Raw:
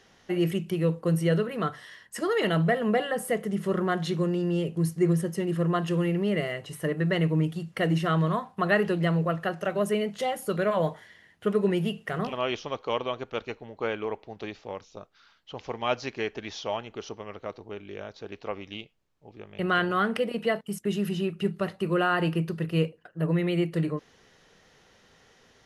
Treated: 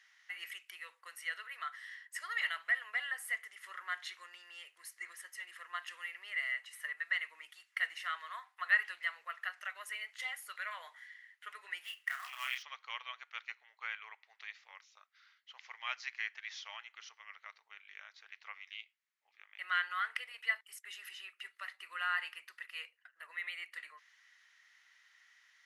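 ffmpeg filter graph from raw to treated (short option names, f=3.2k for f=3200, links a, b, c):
-filter_complex "[0:a]asettb=1/sr,asplit=3[a][b][c];[a]atrim=end=11.844[d];[b]atrim=start=11.84:end=12.63,asetpts=PTS-STARTPTS,afade=t=in:d=0.004:c=qsin,afade=t=out:st=0.786:d=0.004:c=qsin,highpass=760,acrusher=bits=3:mode=log:mix=0:aa=0.000001,asplit=2[e][f];[f]adelay=31,volume=-5dB[g];[e][g]amix=inputs=2:normalize=0,atrim=end_sample=34839[h];[c]atrim=start=12.626[i];[d][h]acrossfade=d=0.004:c1=hsin:c2=qsin[j];[j][i]acrossfade=d=0.004:c1=qsin:c2=hsin,highpass=f=1.2k:w=0.5412,highpass=f=1.2k:w=1.3066,equalizer=f=2k:t=o:w=0.41:g=10.5,volume=-8.5dB"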